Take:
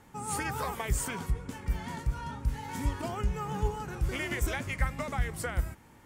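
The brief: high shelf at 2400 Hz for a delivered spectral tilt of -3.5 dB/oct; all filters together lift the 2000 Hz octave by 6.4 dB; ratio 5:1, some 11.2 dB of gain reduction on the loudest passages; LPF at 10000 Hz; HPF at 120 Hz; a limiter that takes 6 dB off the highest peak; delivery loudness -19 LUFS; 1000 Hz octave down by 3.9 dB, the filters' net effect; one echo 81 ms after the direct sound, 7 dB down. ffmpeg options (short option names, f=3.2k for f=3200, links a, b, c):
-af "highpass=120,lowpass=10k,equalizer=f=1k:t=o:g=-8,equalizer=f=2k:t=o:g=7,highshelf=f=2.4k:g=5.5,acompressor=threshold=-38dB:ratio=5,alimiter=level_in=7.5dB:limit=-24dB:level=0:latency=1,volume=-7.5dB,aecho=1:1:81:0.447,volume=22dB"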